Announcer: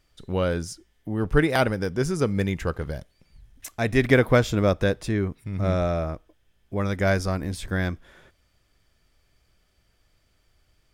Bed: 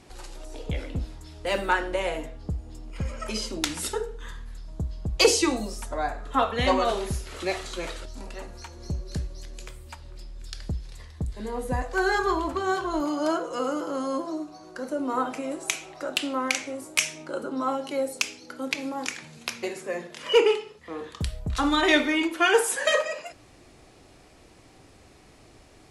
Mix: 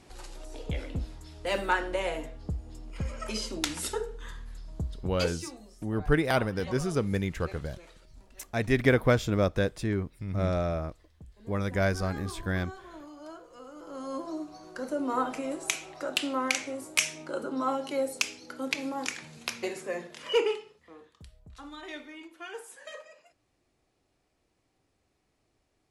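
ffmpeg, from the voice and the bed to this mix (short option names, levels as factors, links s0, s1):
-filter_complex "[0:a]adelay=4750,volume=0.596[s0];[1:a]volume=5.31,afade=t=out:st=4.86:d=0.44:silence=0.149624,afade=t=in:st=13.73:d=0.83:silence=0.133352,afade=t=out:st=19.79:d=1.33:silence=0.105925[s1];[s0][s1]amix=inputs=2:normalize=0"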